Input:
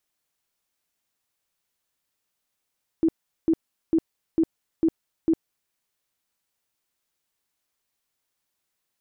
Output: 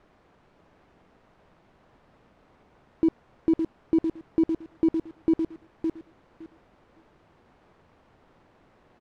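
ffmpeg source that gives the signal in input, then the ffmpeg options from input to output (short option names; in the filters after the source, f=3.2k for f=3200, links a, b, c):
-f lavfi -i "aevalsrc='0.158*sin(2*PI*325*mod(t,0.45))*lt(mod(t,0.45),18/325)':d=2.7:s=44100"
-filter_complex "[0:a]aeval=exprs='val(0)+0.5*0.00944*sgn(val(0))':c=same,asplit=2[a][b];[b]adelay=562,lowpass=f=1.2k:p=1,volume=-5.5dB,asplit=2[c][d];[d]adelay=562,lowpass=f=1.2k:p=1,volume=0.16,asplit=2[e][f];[f]adelay=562,lowpass=f=1.2k:p=1,volume=0.16[g];[c][e][g]amix=inputs=3:normalize=0[h];[a][h]amix=inputs=2:normalize=0,adynamicsmooth=sensitivity=5:basefreq=840"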